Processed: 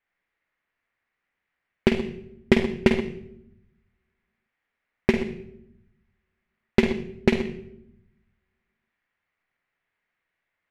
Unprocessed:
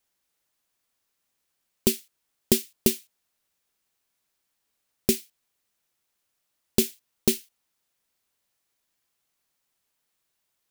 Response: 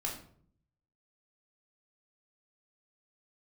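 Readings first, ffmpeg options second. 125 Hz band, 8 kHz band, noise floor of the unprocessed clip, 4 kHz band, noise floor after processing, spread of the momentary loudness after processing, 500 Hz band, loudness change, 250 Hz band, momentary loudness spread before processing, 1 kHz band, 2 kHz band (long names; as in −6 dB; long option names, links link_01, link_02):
+6.0 dB, −19.0 dB, −78 dBFS, −3.0 dB, −83 dBFS, 16 LU, +5.5 dB, +1.5 dB, +5.5 dB, 6 LU, +12.5 dB, +12.0 dB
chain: -filter_complex "[0:a]asplit=2[link_01][link_02];[1:a]atrim=start_sample=2205,asetrate=25578,aresample=44100,adelay=48[link_03];[link_02][link_03]afir=irnorm=-1:irlink=0,volume=-6.5dB[link_04];[link_01][link_04]amix=inputs=2:normalize=0,aeval=exprs='0.668*(cos(1*acos(clip(val(0)/0.668,-1,1)))-cos(1*PI/2))+0.0596*(cos(7*acos(clip(val(0)/0.668,-1,1)))-cos(7*PI/2))':channel_layout=same,lowpass=frequency=2000:width_type=q:width=3.5,volume=5dB"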